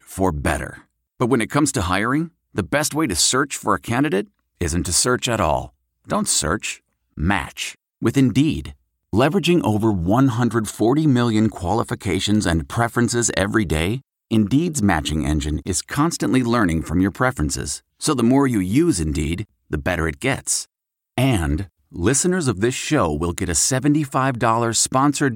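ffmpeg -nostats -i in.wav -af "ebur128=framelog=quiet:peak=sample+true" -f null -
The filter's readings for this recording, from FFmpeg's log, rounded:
Integrated loudness:
  I:         -19.9 LUFS
  Threshold: -30.1 LUFS
Loudness range:
  LRA:         2.8 LU
  Threshold: -40.2 LUFS
  LRA low:   -21.5 LUFS
  LRA high:  -18.8 LUFS
Sample peak:
  Peak:       -4.8 dBFS
True peak:
  Peak:       -4.7 dBFS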